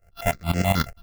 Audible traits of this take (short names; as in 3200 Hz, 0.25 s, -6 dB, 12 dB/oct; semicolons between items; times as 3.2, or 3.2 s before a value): a buzz of ramps at a fixed pitch in blocks of 64 samples; tremolo saw up 9.7 Hz, depth 90%; aliases and images of a low sample rate 8900 Hz, jitter 0%; notches that jump at a steady rate 9.3 Hz 990–3700 Hz